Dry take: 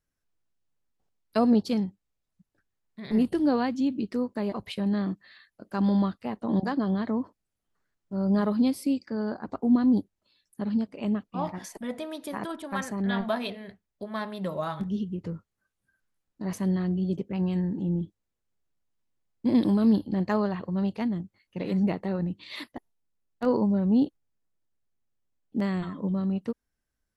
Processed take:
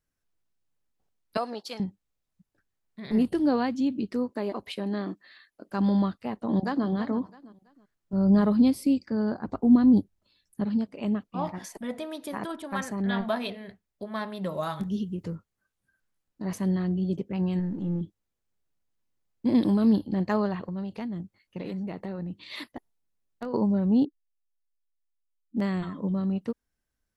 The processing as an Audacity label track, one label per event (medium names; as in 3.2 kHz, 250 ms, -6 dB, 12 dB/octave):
1.370000	1.800000	high-pass 740 Hz
4.300000	5.680000	resonant low shelf 210 Hz -8 dB, Q 1.5
6.340000	6.860000	echo throw 330 ms, feedback 30%, level -12 dB
8.130000	10.650000	bass shelf 170 Hz +10 dB
14.540000	15.350000	treble shelf 5.6 kHz +10.5 dB
17.590000	18.010000	partial rectifier negative side -3 dB
20.630000	23.540000	compression 10:1, threshold -30 dBFS
24.050000	25.570000	spectral contrast enhancement exponent 3.4